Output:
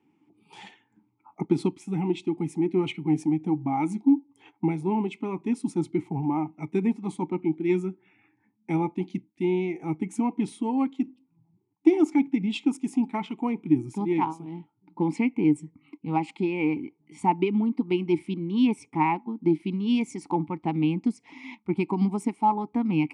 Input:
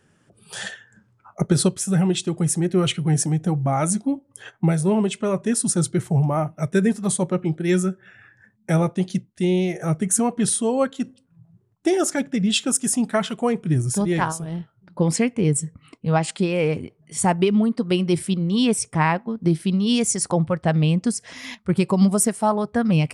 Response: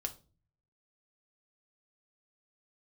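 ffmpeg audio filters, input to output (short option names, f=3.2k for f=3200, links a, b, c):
-filter_complex "[0:a]aeval=exprs='0.562*(cos(1*acos(clip(val(0)/0.562,-1,1)))-cos(1*PI/2))+0.0112*(cos(7*acos(clip(val(0)/0.562,-1,1)))-cos(7*PI/2))':c=same,asplit=3[a][b][c];[a]bandpass=f=300:t=q:w=8,volume=0dB[d];[b]bandpass=f=870:t=q:w=8,volume=-6dB[e];[c]bandpass=f=2.24k:t=q:w=8,volume=-9dB[f];[d][e][f]amix=inputs=3:normalize=0,volume=8.5dB"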